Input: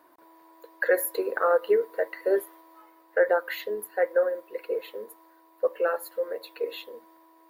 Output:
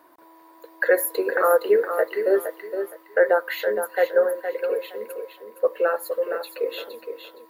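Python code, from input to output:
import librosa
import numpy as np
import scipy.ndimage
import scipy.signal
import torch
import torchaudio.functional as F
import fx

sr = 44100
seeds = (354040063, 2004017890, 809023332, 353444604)

y = fx.low_shelf(x, sr, hz=150.0, db=-11.5, at=(4.33, 4.96))
y = fx.echo_feedback(y, sr, ms=465, feedback_pct=24, wet_db=-8)
y = F.gain(torch.from_numpy(y), 4.0).numpy()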